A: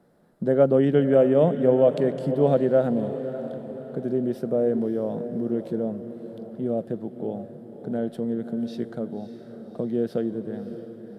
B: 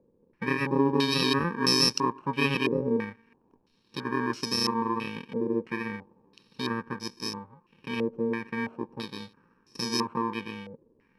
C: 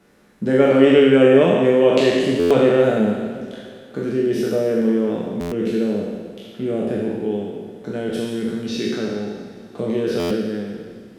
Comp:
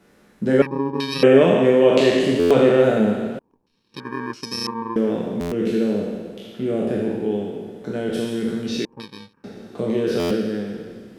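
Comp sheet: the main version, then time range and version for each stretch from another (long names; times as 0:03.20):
C
0:00.62–0:01.23: punch in from B
0:03.39–0:04.96: punch in from B
0:08.85–0:09.44: punch in from B
not used: A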